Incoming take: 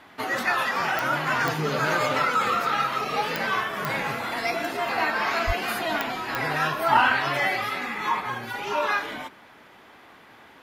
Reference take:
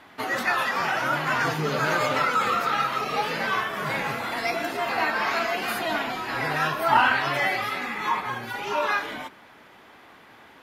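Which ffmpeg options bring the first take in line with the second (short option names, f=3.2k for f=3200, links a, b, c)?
-filter_complex "[0:a]adeclick=t=4,asplit=3[a][b][c];[a]afade=t=out:st=5.46:d=0.02[d];[b]highpass=f=140:w=0.5412,highpass=f=140:w=1.3066,afade=t=in:st=5.46:d=0.02,afade=t=out:st=5.58:d=0.02[e];[c]afade=t=in:st=5.58:d=0.02[f];[d][e][f]amix=inputs=3:normalize=0"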